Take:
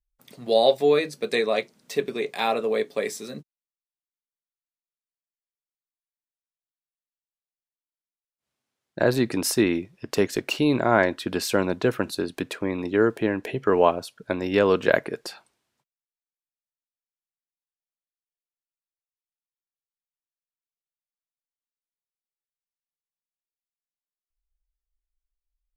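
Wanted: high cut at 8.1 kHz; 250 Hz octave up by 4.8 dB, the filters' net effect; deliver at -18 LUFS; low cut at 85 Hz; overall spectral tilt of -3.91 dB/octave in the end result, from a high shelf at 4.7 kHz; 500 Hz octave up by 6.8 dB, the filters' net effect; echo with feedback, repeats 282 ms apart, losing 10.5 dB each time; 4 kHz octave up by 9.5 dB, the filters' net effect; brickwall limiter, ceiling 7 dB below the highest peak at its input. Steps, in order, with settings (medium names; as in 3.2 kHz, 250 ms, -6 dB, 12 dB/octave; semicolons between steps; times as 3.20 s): high-pass 85 Hz; low-pass 8.1 kHz; peaking EQ 250 Hz +3.5 dB; peaking EQ 500 Hz +7 dB; peaking EQ 4 kHz +7 dB; treble shelf 4.7 kHz +9 dB; peak limiter -5.5 dBFS; feedback delay 282 ms, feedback 30%, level -10.5 dB; trim +1 dB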